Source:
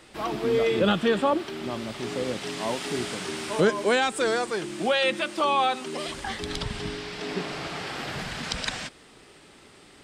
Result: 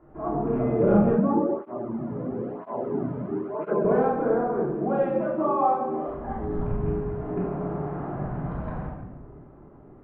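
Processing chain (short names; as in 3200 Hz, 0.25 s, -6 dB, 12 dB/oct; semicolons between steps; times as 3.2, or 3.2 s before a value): rattling part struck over -27 dBFS, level -15 dBFS; LPF 1100 Hz 24 dB/oct; low shelf 260 Hz +5 dB; shoebox room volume 710 m³, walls mixed, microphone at 3.1 m; 1.16–3.85 tape flanging out of phase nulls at 1 Hz, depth 2.9 ms; gain -6 dB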